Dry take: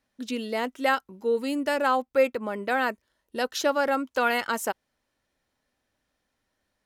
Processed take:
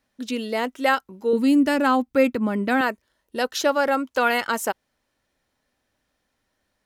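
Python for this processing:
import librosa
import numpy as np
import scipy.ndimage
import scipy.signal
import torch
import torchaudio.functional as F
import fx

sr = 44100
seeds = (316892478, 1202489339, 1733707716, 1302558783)

y = fx.low_shelf_res(x, sr, hz=360.0, db=7.5, q=1.5, at=(1.33, 2.81))
y = y * 10.0 ** (3.5 / 20.0)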